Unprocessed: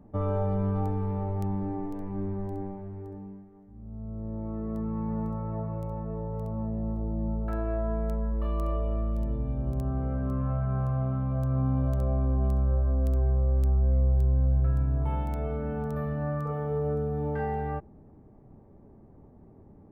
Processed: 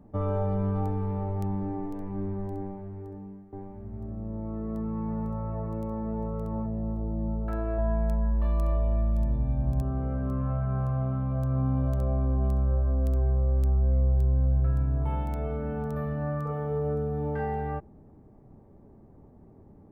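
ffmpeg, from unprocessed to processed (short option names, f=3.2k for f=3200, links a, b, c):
-filter_complex "[0:a]asettb=1/sr,asplit=3[a][b][c];[a]atrim=end=2.564[d];[b]atrim=start=2.56:end=6.66,asetpts=PTS-STARTPTS,afade=t=in:d=0.004:c=qsin,afade=t=out:st=4.096:d=0.004:c=qsin,aecho=1:1:967:0.596,atrim=end_sample=180810[e];[c]atrim=start=6.656[f];[d][e]acrossfade=d=0.004:c1=hsin:c2=qsin[g];[g][f]acrossfade=d=0.004:c1=qsin:c2=hsin,asettb=1/sr,asplit=3[h][i][j];[h]atrim=end=7.784[k];[i]atrim=start=7.78:end=9.82,asetpts=PTS-STARTPTS,afade=t=in:d=0.004:c=qsin,afade=t=out:st=2.036:d=0.004:c=qsin,aecho=1:1:1.2:0.61,atrim=end_sample=89964[l];[j]atrim=start=9.816[m];[k][l]acrossfade=d=0.004:c1=hsin:c2=qsin[n];[n][m]acrossfade=d=0.004:c1=qsin:c2=hsin"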